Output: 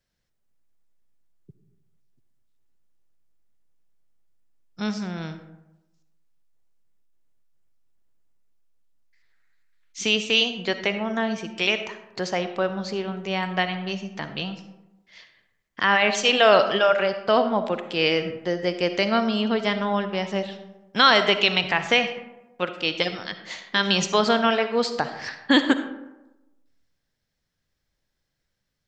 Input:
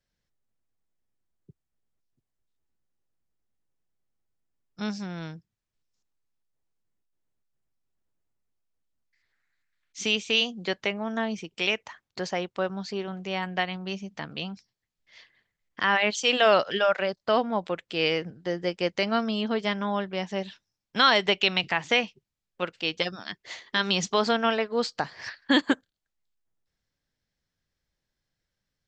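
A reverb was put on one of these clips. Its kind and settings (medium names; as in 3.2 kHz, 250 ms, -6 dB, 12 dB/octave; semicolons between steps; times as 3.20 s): algorithmic reverb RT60 1 s, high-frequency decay 0.45×, pre-delay 20 ms, DRR 9 dB; trim +3.5 dB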